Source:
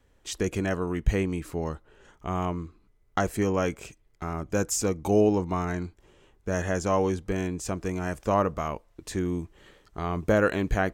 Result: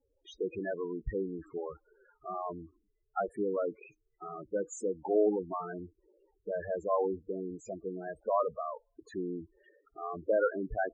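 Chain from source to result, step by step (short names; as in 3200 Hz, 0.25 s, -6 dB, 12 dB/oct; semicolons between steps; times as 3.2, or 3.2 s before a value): tone controls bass -12 dB, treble -7 dB; loudest bins only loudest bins 8; gain -2.5 dB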